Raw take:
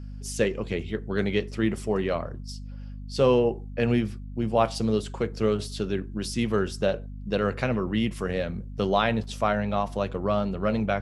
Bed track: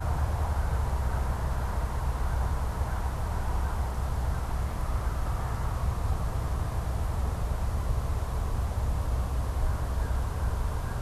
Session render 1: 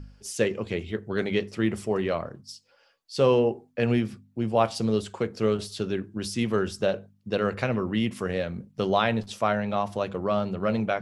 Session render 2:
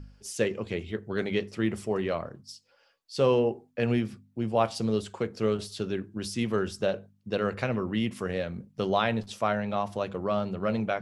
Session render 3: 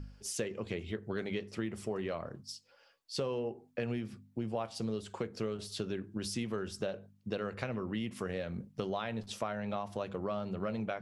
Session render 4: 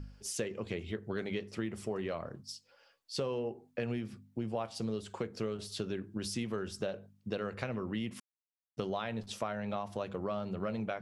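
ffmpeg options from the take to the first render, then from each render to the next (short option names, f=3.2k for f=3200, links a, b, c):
-af "bandreject=f=50:t=h:w=4,bandreject=f=100:t=h:w=4,bandreject=f=150:t=h:w=4,bandreject=f=200:t=h:w=4,bandreject=f=250:t=h:w=4"
-af "volume=-2.5dB"
-af "acompressor=threshold=-33dB:ratio=6"
-filter_complex "[0:a]asplit=3[a][b][c];[a]atrim=end=8.2,asetpts=PTS-STARTPTS,afade=t=out:st=8.196:d=0.004:c=hsin[d];[b]atrim=start=8.2:end=8.77,asetpts=PTS-STARTPTS,volume=0[e];[c]atrim=start=8.77,asetpts=PTS-STARTPTS,afade=t=in:d=0.004:c=hsin[f];[d][e][f]concat=n=3:v=0:a=1"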